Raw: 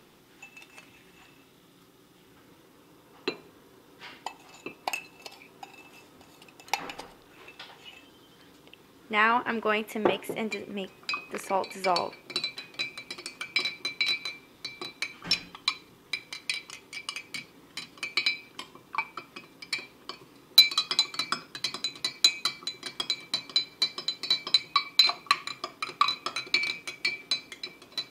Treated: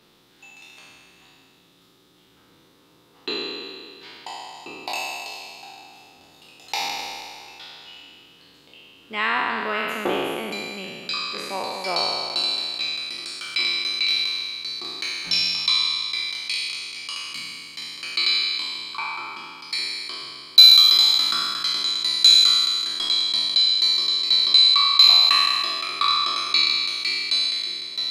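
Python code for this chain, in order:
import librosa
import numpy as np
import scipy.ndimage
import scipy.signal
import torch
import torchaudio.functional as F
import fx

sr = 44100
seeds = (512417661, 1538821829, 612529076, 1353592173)

y = fx.spec_trails(x, sr, decay_s=2.23)
y = fx.peak_eq(y, sr, hz=4000.0, db=8.5, octaves=0.66)
y = F.gain(torch.from_numpy(y), -4.5).numpy()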